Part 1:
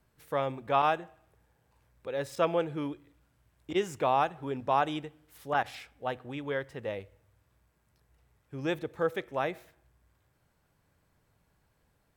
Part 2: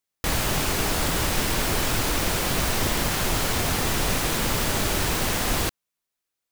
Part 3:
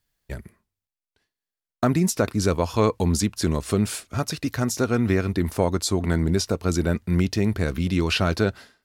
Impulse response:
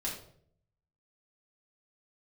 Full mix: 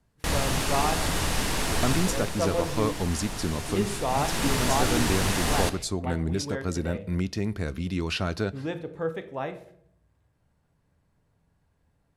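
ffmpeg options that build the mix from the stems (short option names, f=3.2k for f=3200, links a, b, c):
-filter_complex "[0:a]tiltshelf=f=650:g=3.5,volume=-3.5dB,asplit=2[a][b];[b]volume=-7.5dB[c];[1:a]volume=5dB,afade=t=out:st=1.92:d=0.39:silence=0.375837,afade=t=in:st=4.07:d=0.41:silence=0.334965,asplit=2[d][e];[e]volume=-10.5dB[f];[2:a]volume=-7dB,asplit=2[g][h];[h]volume=-21dB[i];[3:a]atrim=start_sample=2205[j];[c][f][i]amix=inputs=3:normalize=0[k];[k][j]afir=irnorm=-1:irlink=0[l];[a][d][g][l]amix=inputs=4:normalize=0,lowpass=f=12k:w=0.5412,lowpass=f=12k:w=1.3066"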